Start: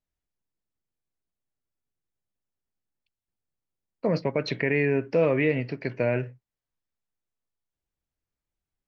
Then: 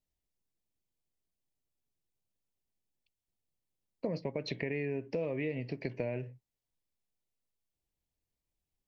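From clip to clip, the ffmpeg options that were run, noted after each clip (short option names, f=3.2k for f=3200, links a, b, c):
-af "equalizer=f=1.4k:t=o:w=0.61:g=-13,acompressor=threshold=-33dB:ratio=5"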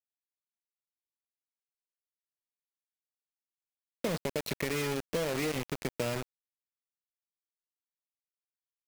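-af "acrusher=bits=5:mix=0:aa=0.000001,volume=2dB"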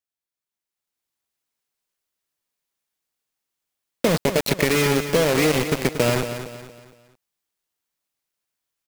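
-filter_complex "[0:a]asplit=2[a][b];[b]aecho=0:1:232|464|696|928:0.316|0.12|0.0457|0.0174[c];[a][c]amix=inputs=2:normalize=0,dynaudnorm=f=340:g=5:m=10dB,volume=3dB"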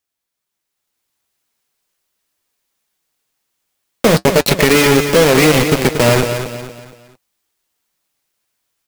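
-filter_complex "[0:a]asplit=2[a][b];[b]aeval=exprs='0.631*sin(PI/2*2.82*val(0)/0.631)':c=same,volume=-5.5dB[c];[a][c]amix=inputs=2:normalize=0,flanger=delay=2.3:depth=8.6:regen=-57:speed=0.4:shape=triangular,volume=4.5dB"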